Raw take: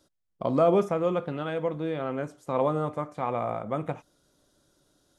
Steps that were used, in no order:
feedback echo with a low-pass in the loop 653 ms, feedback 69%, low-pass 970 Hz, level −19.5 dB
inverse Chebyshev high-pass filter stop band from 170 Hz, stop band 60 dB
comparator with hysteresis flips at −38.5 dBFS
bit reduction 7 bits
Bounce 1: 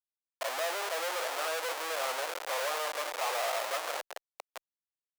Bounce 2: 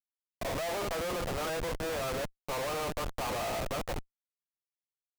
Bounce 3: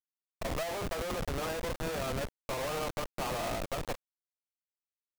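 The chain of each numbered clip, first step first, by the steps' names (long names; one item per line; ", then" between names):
feedback echo with a low-pass in the loop, then bit reduction, then comparator with hysteresis, then inverse Chebyshev high-pass filter
inverse Chebyshev high-pass filter, then bit reduction, then feedback echo with a low-pass in the loop, then comparator with hysteresis
inverse Chebyshev high-pass filter, then comparator with hysteresis, then feedback echo with a low-pass in the loop, then bit reduction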